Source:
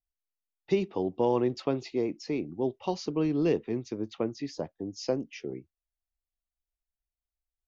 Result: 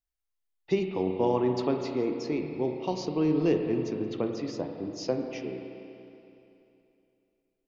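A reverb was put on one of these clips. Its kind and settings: spring tank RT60 2.9 s, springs 32/47 ms, chirp 25 ms, DRR 3.5 dB

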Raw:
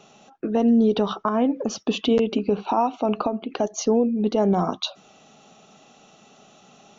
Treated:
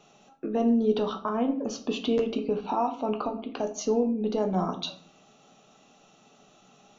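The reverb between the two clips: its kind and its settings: shoebox room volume 55 m³, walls mixed, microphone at 0.38 m; gain -7 dB

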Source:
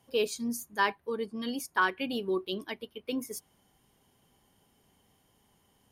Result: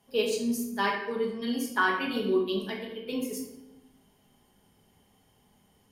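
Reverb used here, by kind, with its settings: shoebox room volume 340 m³, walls mixed, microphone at 1.4 m; gain -1.5 dB

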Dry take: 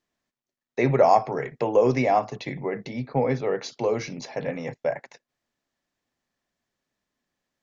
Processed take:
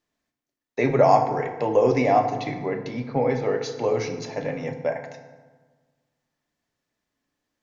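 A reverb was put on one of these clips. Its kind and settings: FDN reverb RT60 1.4 s, low-frequency decay 1.25×, high-frequency decay 0.55×, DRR 5 dB

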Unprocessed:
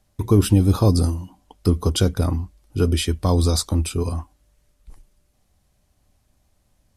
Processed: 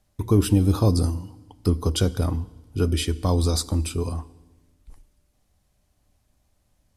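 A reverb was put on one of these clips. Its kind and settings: FDN reverb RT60 1.2 s, low-frequency decay 1.4×, high-frequency decay 0.95×, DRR 17.5 dB; gain -3 dB

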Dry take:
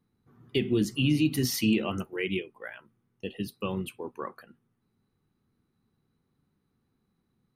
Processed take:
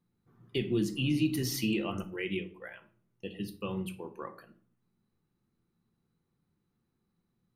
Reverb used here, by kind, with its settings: shoebox room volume 460 m³, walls furnished, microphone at 0.85 m; gain -5 dB

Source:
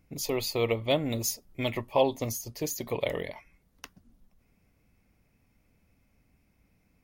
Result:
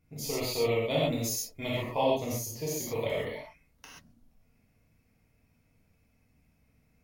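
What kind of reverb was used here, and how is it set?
non-linear reverb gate 0.16 s flat, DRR -7 dB; gain -8.5 dB

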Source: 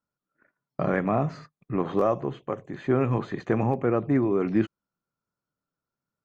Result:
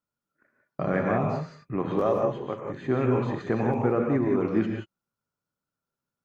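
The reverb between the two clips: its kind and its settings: non-linear reverb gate 0.2 s rising, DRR 1 dB; gain -2.5 dB

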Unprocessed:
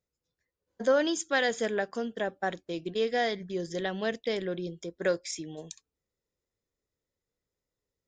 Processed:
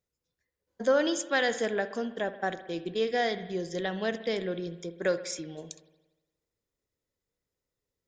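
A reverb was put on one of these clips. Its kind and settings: spring tank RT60 1.1 s, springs 59 ms, chirp 25 ms, DRR 12 dB

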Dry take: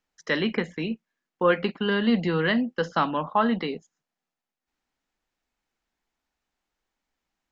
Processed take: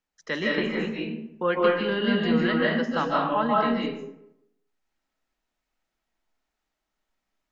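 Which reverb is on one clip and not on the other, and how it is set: digital reverb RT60 0.81 s, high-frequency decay 0.55×, pre-delay 0.115 s, DRR -4 dB; gain -4.5 dB

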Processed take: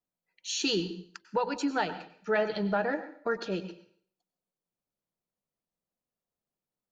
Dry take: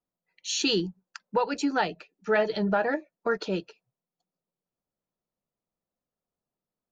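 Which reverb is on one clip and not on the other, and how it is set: plate-style reverb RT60 0.55 s, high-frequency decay 0.95×, pre-delay 85 ms, DRR 11.5 dB; gain -3.5 dB

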